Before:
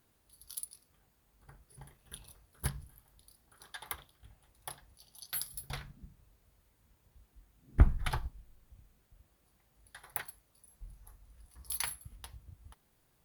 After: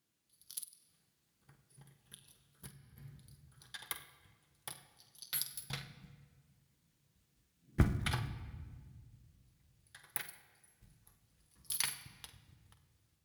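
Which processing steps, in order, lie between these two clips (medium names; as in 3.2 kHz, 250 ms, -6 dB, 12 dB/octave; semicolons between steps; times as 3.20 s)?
companding laws mixed up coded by A; peaking EQ 780 Hz -10.5 dB 2.5 oct; level rider gain up to 4 dB; treble shelf 10 kHz -9.5 dB; simulated room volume 2200 m³, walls mixed, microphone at 0.7 m; 0.63–2.97 s: compression 3:1, threshold -54 dBFS, peak gain reduction 19.5 dB; high-pass 140 Hz 12 dB/octave; flutter echo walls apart 8.2 m, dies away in 0.23 s; trim +3 dB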